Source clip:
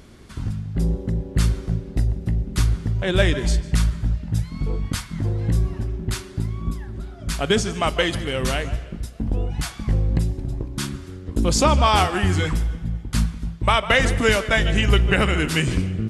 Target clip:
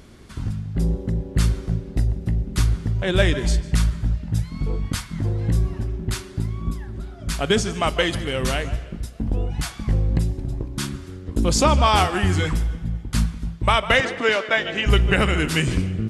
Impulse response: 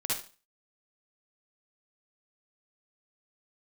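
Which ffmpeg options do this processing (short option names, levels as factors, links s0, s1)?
-filter_complex "[0:a]asettb=1/sr,asplit=3[s0][s1][s2];[s0]atrim=end=14.004[s3];[s1]atrim=start=14:end=14.86,asetpts=PTS-STARTPTS,afade=t=in:d=0.004:c=qsin,afade=t=out:st=0.856:d=0.004:c=qsin,highpass=330,lowpass=4300[s4];[s2]atrim=start=14.856[s5];[s3][s4]acrossfade=d=0.004:c1=hsin:c2=qsin[s6];[s6][s5]acrossfade=d=0.004:c1=qsin:c2=hsin"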